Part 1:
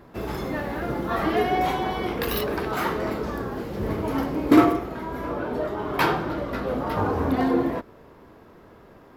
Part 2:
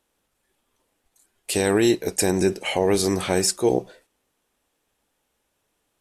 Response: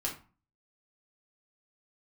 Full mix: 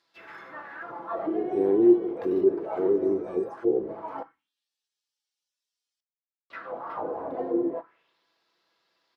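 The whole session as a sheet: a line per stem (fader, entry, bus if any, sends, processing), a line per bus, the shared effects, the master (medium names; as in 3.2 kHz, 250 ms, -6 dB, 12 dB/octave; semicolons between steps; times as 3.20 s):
-3.0 dB, 0.00 s, muted 4.23–6.50 s, send -13.5 dB, comb 6 ms, depth 41%
-1.5 dB, 0.00 s, send -10 dB, harmonic-percussive separation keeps harmonic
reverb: on, RT60 0.35 s, pre-delay 3 ms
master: auto-wah 380–4900 Hz, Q 2.9, down, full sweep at -20 dBFS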